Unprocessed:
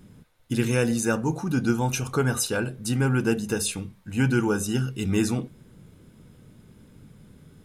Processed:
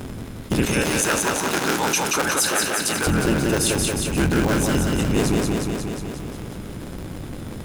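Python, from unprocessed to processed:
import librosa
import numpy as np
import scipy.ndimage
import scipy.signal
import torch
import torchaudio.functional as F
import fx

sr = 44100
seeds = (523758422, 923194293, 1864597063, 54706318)

y = fx.cycle_switch(x, sr, every=3, mode='inverted')
y = fx.highpass(y, sr, hz=1200.0, slope=6, at=(0.65, 3.07))
y = fx.rider(y, sr, range_db=3, speed_s=0.5)
y = fx.echo_feedback(y, sr, ms=180, feedback_pct=53, wet_db=-4)
y = fx.env_flatten(y, sr, amount_pct=50)
y = y * 10.0 ** (2.5 / 20.0)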